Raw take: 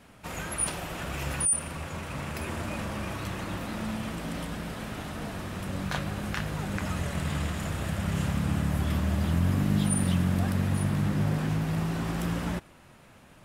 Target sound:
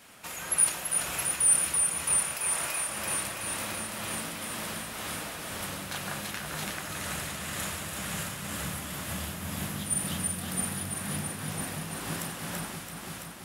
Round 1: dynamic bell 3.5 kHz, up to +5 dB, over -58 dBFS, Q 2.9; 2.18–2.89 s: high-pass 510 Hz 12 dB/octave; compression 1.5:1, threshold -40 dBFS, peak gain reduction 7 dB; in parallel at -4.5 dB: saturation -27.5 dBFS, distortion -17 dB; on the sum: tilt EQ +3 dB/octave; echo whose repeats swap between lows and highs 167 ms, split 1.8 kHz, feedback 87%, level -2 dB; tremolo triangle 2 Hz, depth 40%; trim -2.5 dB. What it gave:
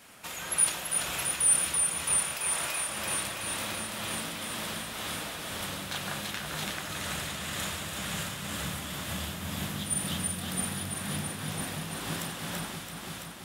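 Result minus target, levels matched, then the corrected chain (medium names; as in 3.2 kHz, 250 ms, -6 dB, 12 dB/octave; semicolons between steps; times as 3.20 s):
4 kHz band +4.0 dB
dynamic bell 11 kHz, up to +5 dB, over -58 dBFS, Q 2.9; 2.18–2.89 s: high-pass 510 Hz 12 dB/octave; compression 1.5:1, threshold -40 dBFS, peak gain reduction 7.5 dB; in parallel at -4.5 dB: saturation -27.5 dBFS, distortion -17 dB; on the sum: tilt EQ +3 dB/octave; echo whose repeats swap between lows and highs 167 ms, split 1.8 kHz, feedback 87%, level -2 dB; tremolo triangle 2 Hz, depth 40%; trim -2.5 dB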